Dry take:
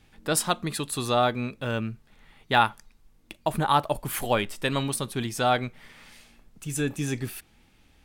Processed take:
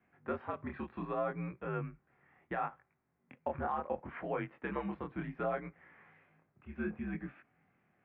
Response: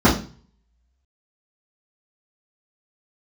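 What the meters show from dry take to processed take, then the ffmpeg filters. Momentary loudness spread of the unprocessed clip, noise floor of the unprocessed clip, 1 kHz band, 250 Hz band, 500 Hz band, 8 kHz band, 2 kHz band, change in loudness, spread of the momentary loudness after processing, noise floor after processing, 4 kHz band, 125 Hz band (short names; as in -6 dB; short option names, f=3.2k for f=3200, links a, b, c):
10 LU, -61 dBFS, -13.5 dB, -10.0 dB, -10.0 dB, under -40 dB, -14.0 dB, -12.5 dB, 7 LU, -78 dBFS, under -30 dB, -13.0 dB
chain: -af "flanger=delay=19.5:depth=7.9:speed=0.68,alimiter=limit=-20dB:level=0:latency=1:release=121,highpass=f=200:t=q:w=0.5412,highpass=f=200:t=q:w=1.307,lowpass=f=2.2k:t=q:w=0.5176,lowpass=f=2.2k:t=q:w=0.7071,lowpass=f=2.2k:t=q:w=1.932,afreqshift=-75,volume=-4.5dB"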